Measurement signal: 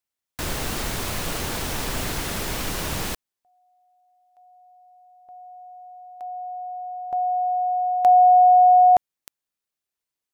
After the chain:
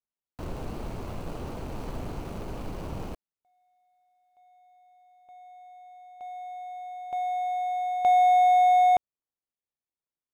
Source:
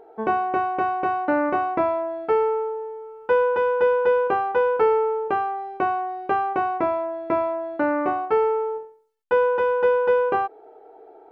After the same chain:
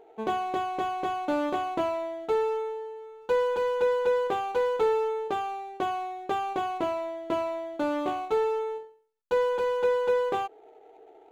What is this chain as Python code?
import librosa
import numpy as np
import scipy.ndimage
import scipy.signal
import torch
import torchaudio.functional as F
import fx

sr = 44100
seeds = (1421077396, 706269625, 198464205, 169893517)

y = scipy.ndimage.median_filter(x, 25, mode='constant')
y = y * 10.0 ** (-5.0 / 20.0)